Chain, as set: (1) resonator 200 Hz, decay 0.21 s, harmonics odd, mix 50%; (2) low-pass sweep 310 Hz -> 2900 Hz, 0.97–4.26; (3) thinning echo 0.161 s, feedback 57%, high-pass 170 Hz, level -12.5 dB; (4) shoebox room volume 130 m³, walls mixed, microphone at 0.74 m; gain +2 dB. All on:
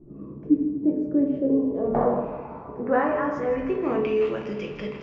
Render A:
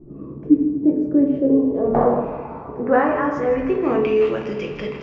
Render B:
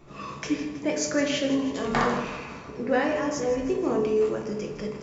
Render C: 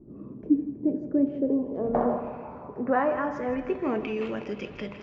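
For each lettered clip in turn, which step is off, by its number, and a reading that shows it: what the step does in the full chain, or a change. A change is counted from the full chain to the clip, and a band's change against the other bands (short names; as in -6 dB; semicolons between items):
1, loudness change +5.5 LU; 2, 2 kHz band +5.5 dB; 4, 125 Hz band -2.0 dB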